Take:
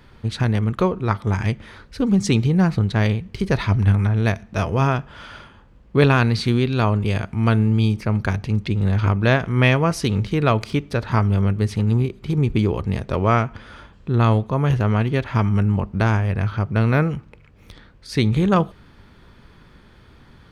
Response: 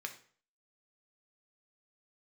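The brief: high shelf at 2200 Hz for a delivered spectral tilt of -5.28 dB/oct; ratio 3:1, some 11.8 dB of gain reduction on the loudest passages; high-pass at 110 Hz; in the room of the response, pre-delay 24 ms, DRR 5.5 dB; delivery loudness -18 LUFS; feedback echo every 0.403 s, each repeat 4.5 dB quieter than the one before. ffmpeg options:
-filter_complex "[0:a]highpass=110,highshelf=f=2.2k:g=6,acompressor=threshold=-27dB:ratio=3,aecho=1:1:403|806|1209|1612|2015|2418|2821|3224|3627:0.596|0.357|0.214|0.129|0.0772|0.0463|0.0278|0.0167|0.01,asplit=2[a][b];[1:a]atrim=start_sample=2205,adelay=24[c];[b][c]afir=irnorm=-1:irlink=0,volume=-5dB[d];[a][d]amix=inputs=2:normalize=0,volume=9.5dB"

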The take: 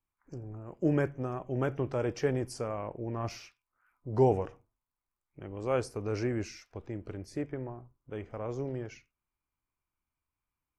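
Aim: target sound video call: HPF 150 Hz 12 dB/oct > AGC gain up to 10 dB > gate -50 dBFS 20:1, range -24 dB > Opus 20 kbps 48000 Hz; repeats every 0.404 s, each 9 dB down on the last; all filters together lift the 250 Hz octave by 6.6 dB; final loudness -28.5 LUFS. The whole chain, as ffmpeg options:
-af "highpass=150,equalizer=f=250:t=o:g=9,aecho=1:1:404|808|1212|1616:0.355|0.124|0.0435|0.0152,dynaudnorm=m=10dB,agate=range=-24dB:threshold=-50dB:ratio=20,volume=2dB" -ar 48000 -c:a libopus -b:a 20k

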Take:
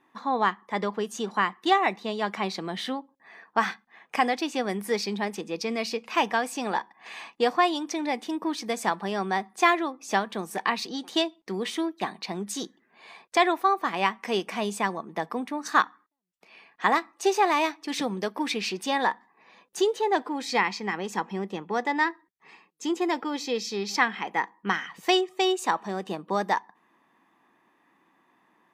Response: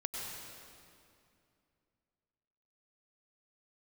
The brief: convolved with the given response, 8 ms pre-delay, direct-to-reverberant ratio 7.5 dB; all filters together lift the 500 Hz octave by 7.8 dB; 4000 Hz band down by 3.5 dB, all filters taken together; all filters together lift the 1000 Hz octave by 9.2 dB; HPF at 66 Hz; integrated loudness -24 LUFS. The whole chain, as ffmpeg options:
-filter_complex "[0:a]highpass=66,equalizer=f=500:t=o:g=8,equalizer=f=1k:t=o:g=9,equalizer=f=4k:t=o:g=-5.5,asplit=2[a][b];[1:a]atrim=start_sample=2205,adelay=8[c];[b][c]afir=irnorm=-1:irlink=0,volume=-9.5dB[d];[a][d]amix=inputs=2:normalize=0,volume=-4dB"

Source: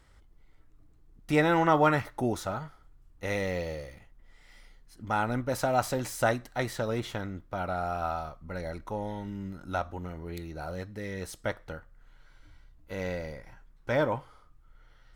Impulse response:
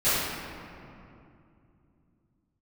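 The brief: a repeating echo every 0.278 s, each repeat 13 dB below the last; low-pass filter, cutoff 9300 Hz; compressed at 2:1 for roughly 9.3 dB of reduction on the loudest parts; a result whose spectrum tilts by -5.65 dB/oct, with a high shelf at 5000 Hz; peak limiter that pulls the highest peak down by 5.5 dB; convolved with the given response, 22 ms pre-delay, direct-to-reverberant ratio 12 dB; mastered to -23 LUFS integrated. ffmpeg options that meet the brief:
-filter_complex "[0:a]lowpass=9.3k,highshelf=f=5k:g=-5.5,acompressor=threshold=-36dB:ratio=2,alimiter=level_in=2dB:limit=-24dB:level=0:latency=1,volume=-2dB,aecho=1:1:278|556|834:0.224|0.0493|0.0108,asplit=2[a][b];[1:a]atrim=start_sample=2205,adelay=22[c];[b][c]afir=irnorm=-1:irlink=0,volume=-28dB[d];[a][d]amix=inputs=2:normalize=0,volume=15.5dB"

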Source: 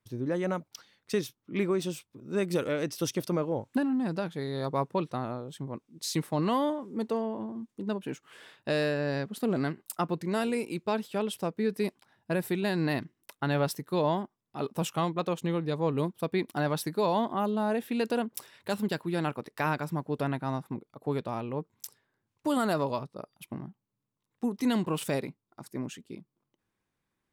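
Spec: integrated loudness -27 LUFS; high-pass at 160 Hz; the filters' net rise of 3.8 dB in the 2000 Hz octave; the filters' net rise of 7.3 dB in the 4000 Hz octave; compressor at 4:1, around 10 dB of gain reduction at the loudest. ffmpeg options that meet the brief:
-af "highpass=160,equalizer=f=2k:t=o:g=3,equalizer=f=4k:t=o:g=8,acompressor=threshold=-35dB:ratio=4,volume=12dB"

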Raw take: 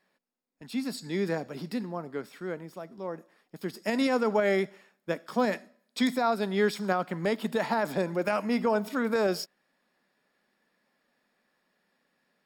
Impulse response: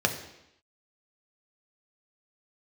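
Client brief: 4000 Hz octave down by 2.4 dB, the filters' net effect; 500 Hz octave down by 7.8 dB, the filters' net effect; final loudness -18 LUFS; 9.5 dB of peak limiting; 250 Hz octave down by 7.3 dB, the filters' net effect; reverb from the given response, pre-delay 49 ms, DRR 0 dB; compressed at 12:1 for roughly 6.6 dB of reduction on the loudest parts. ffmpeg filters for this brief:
-filter_complex "[0:a]equalizer=f=250:t=o:g=-7,equalizer=f=500:t=o:g=-8,equalizer=f=4k:t=o:g=-3,acompressor=threshold=-32dB:ratio=12,alimiter=level_in=7dB:limit=-24dB:level=0:latency=1,volume=-7dB,asplit=2[a][b];[1:a]atrim=start_sample=2205,adelay=49[c];[b][c]afir=irnorm=-1:irlink=0,volume=-11.5dB[d];[a][d]amix=inputs=2:normalize=0,volume=21dB"

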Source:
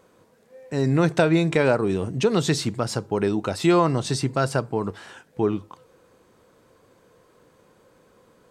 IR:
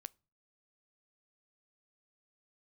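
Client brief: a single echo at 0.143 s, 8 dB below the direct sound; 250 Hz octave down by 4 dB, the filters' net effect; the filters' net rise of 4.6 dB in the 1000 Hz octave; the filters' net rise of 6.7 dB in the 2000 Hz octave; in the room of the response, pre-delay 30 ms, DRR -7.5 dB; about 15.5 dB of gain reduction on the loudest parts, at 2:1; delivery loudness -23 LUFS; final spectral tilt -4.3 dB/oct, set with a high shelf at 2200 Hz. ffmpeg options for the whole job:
-filter_complex "[0:a]equalizer=f=250:t=o:g=-7,equalizer=f=1k:t=o:g=3.5,equalizer=f=2k:t=o:g=5.5,highshelf=f=2.2k:g=4.5,acompressor=threshold=-42dB:ratio=2,aecho=1:1:143:0.398,asplit=2[a][b];[1:a]atrim=start_sample=2205,adelay=30[c];[b][c]afir=irnorm=-1:irlink=0,volume=13dB[d];[a][d]amix=inputs=2:normalize=0,volume=3.5dB"

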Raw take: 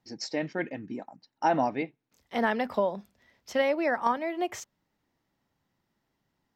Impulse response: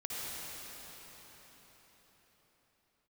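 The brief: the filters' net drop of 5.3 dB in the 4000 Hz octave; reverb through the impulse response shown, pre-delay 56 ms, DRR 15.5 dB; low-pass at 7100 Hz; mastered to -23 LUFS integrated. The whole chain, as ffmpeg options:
-filter_complex "[0:a]lowpass=7.1k,equalizer=f=4k:t=o:g=-7.5,asplit=2[a][b];[1:a]atrim=start_sample=2205,adelay=56[c];[b][c]afir=irnorm=-1:irlink=0,volume=-19dB[d];[a][d]amix=inputs=2:normalize=0,volume=7dB"

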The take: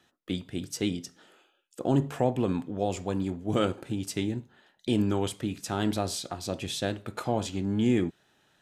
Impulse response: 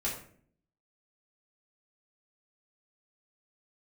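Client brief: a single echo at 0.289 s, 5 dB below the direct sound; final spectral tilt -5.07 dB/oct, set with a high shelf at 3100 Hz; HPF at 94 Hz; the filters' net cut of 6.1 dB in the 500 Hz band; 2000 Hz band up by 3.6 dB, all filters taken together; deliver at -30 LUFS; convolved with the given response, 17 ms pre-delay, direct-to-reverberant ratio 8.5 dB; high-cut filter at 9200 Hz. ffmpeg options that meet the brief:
-filter_complex "[0:a]highpass=94,lowpass=9.2k,equalizer=f=500:t=o:g=-8.5,equalizer=f=2k:t=o:g=6.5,highshelf=f=3.1k:g=-3.5,aecho=1:1:289:0.562,asplit=2[a][b];[1:a]atrim=start_sample=2205,adelay=17[c];[b][c]afir=irnorm=-1:irlink=0,volume=-13dB[d];[a][d]amix=inputs=2:normalize=0,volume=1dB"

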